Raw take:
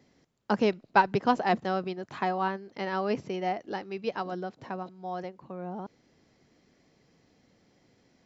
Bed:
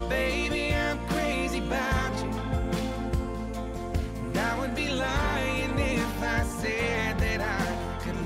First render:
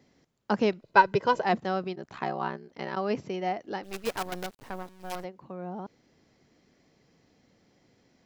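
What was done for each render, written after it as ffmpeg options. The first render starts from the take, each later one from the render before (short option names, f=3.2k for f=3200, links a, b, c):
-filter_complex "[0:a]asettb=1/sr,asplit=3[a][b][c];[a]atrim=end=0.824[d];[b]atrim=start=0.82:end=1.45,asetpts=PTS-STARTPTS,afade=t=in:d=0.004:c=qsin,afade=t=out:st=0.626:d=0.004:c=qsin,aecho=1:1:2:0.65,atrim=end_sample=27783[e];[c]atrim=start=1.446[f];[d][e]acrossfade=d=0.004:c1=hsin:c2=qsin[g];[g][f]acrossfade=d=0.004:c1=qsin:c2=hsin,asplit=3[h][i][j];[h]afade=t=out:st=1.95:d=0.02[k];[i]aeval=exprs='val(0)*sin(2*PI*33*n/s)':c=same,afade=t=in:st=1.95:d=0.02,afade=t=out:st=2.95:d=0.02[l];[j]afade=t=in:st=2.95:d=0.02[m];[k][l][m]amix=inputs=3:normalize=0,asplit=3[n][o][p];[n]afade=t=out:st=3.83:d=0.02[q];[o]acrusher=bits=6:dc=4:mix=0:aa=0.000001,afade=t=in:st=3.83:d=0.02,afade=t=out:st=5.23:d=0.02[r];[p]afade=t=in:st=5.23:d=0.02[s];[q][r][s]amix=inputs=3:normalize=0"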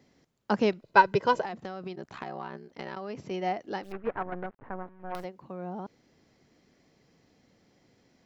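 -filter_complex "[0:a]asettb=1/sr,asplit=3[a][b][c];[a]atrim=end=1.454[d];[b]atrim=start=1.45:end=3.31,asetpts=PTS-STARTPTS,afade=t=in:d=0.004:c=qsin,afade=t=out:st=1.856:d=0.004:c=qsin,acompressor=threshold=-32dB:ratio=16:attack=3.2:release=140:knee=1:detection=peak[e];[c]atrim=start=3.306[f];[d][e]acrossfade=d=0.004:c1=hsin:c2=qsin[g];[g][f]acrossfade=d=0.004:c1=qsin:c2=hsin,asettb=1/sr,asplit=3[h][i][j];[h]atrim=end=3.924[k];[i]atrim=start=3.92:end=5.15,asetpts=PTS-STARTPTS,afade=t=in:d=0.004:c=qsin,afade=t=out:st=1.226:d=0.004:c=qsin,lowpass=f=1.8k:w=0.5412,lowpass=f=1.8k:w=1.3066[l];[j]atrim=start=5.146[m];[k][l]acrossfade=d=0.004:c1=hsin:c2=qsin[n];[n][m]acrossfade=d=0.004:c1=qsin:c2=hsin"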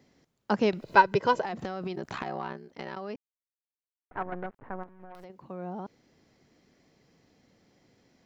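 -filter_complex "[0:a]asettb=1/sr,asplit=3[a][b][c];[a]atrim=end=0.734[d];[b]atrim=start=0.73:end=2.53,asetpts=PTS-STARTPTS,afade=t=in:d=0.004:c=qsin,afade=t=out:st=1.796:d=0.004:c=qsin,acompressor=mode=upward:threshold=-26dB:ratio=2.5:attack=3.2:release=140:knee=2.83:detection=peak[e];[c]atrim=start=2.526[f];[d][e]acrossfade=d=0.004:c1=hsin:c2=qsin[g];[g][f]acrossfade=d=0.004:c1=qsin:c2=hsin,asettb=1/sr,asplit=3[h][i][j];[h]atrim=end=4.834[k];[i]atrim=start=4.83:end=5.3,asetpts=PTS-STARTPTS,afade=t=in:d=0.004:c=qsin,afade=t=out:st=0.466:d=0.004:c=qsin,acompressor=threshold=-41dB:ratio=12:attack=3.2:release=140:knee=1:detection=peak[l];[j]atrim=start=5.296[m];[k][l]acrossfade=d=0.004:c1=hsin:c2=qsin[n];[n][m]acrossfade=d=0.004:c1=qsin:c2=hsin,asplit=3[o][p][q];[o]atrim=end=3.16,asetpts=PTS-STARTPTS,afade=t=out:st=3.156:d=0.004:c=hsin[r];[p]atrim=start=3.16:end=4.11,asetpts=PTS-STARTPTS,volume=0[s];[q]atrim=start=4.11,asetpts=PTS-STARTPTS,afade=t=in:d=0.004:c=hsin[t];[r][s][t]concat=n=3:v=0:a=1"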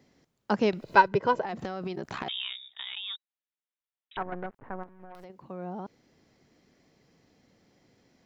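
-filter_complex "[0:a]asettb=1/sr,asplit=3[a][b][c];[a]atrim=end=1.084[d];[b]atrim=start=1.08:end=1.49,asetpts=PTS-STARTPTS,afade=t=in:d=0.004:c=qsin,afade=t=out:st=0.406:d=0.004:c=qsin,highshelf=f=3.6k:g=-11.5[e];[c]atrim=start=1.486[f];[d][e]acrossfade=d=0.004:c1=hsin:c2=qsin[g];[g][f]acrossfade=d=0.004:c1=qsin:c2=hsin,asettb=1/sr,asplit=3[h][i][j];[h]atrim=end=2.284[k];[i]atrim=start=2.28:end=4.17,asetpts=PTS-STARTPTS,afade=t=in:d=0.004:c=qsin,afade=t=out:st=1.886:d=0.004:c=qsin,lowpass=f=3.3k:t=q:w=0.5098,lowpass=f=3.3k:t=q:w=0.6013,lowpass=f=3.3k:t=q:w=0.9,lowpass=f=3.3k:t=q:w=2.563,afreqshift=-3900[l];[j]atrim=start=4.166[m];[k][l]acrossfade=d=0.004:c1=hsin:c2=qsin[n];[n][m]acrossfade=d=0.004:c1=qsin:c2=hsin"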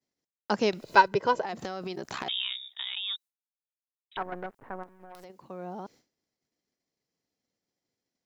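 -af "agate=range=-33dB:threshold=-50dB:ratio=3:detection=peak,bass=f=250:g=-5,treble=f=4k:g=10"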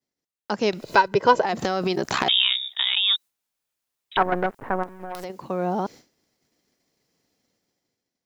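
-af "alimiter=limit=-15dB:level=0:latency=1:release=495,dynaudnorm=f=150:g=11:m=14dB"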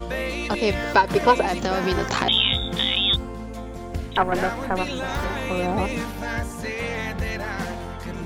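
-filter_complex "[1:a]volume=-0.5dB[a];[0:a][a]amix=inputs=2:normalize=0"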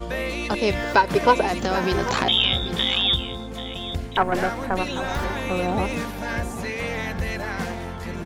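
-af "aecho=1:1:789:0.211"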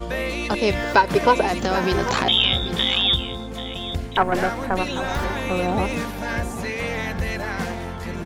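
-af "volume=1.5dB,alimiter=limit=-3dB:level=0:latency=1"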